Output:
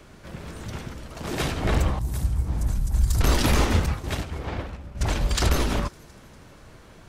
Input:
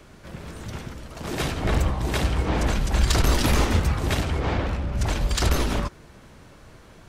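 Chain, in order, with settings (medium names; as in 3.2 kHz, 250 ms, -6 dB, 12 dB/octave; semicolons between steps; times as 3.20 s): 1.99–3.21 s: FFT filter 110 Hz 0 dB, 450 Hz -17 dB, 930 Hz -14 dB, 2.9 kHz -20 dB, 11 kHz +1 dB; 3.86–5.01 s: expander -17 dBFS; feedback echo behind a high-pass 240 ms, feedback 53%, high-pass 5.4 kHz, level -19 dB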